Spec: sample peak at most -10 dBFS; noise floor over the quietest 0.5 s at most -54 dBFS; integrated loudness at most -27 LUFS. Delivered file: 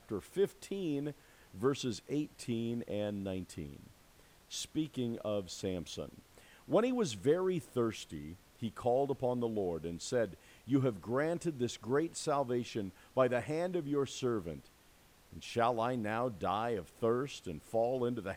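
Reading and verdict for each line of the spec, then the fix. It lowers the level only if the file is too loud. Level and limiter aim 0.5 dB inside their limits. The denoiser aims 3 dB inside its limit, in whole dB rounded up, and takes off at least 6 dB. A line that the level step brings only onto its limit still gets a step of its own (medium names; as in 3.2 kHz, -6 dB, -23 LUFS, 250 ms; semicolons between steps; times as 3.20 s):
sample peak -17.0 dBFS: pass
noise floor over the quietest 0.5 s -63 dBFS: pass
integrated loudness -36.0 LUFS: pass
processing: none needed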